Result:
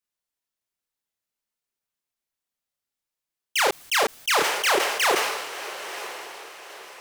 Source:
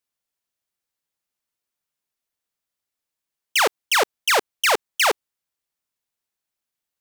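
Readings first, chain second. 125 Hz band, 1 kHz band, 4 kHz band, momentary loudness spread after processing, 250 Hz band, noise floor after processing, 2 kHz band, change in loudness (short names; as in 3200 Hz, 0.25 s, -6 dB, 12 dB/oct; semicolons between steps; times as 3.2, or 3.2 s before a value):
n/a, -1.0 dB, -1.5 dB, 19 LU, +3.0 dB, under -85 dBFS, -1.5 dB, -3.0 dB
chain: chorus voices 6, 0.42 Hz, delay 30 ms, depth 4.4 ms; diffused feedback echo 0.979 s, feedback 40%, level -11 dB; sustainer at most 44 dB/s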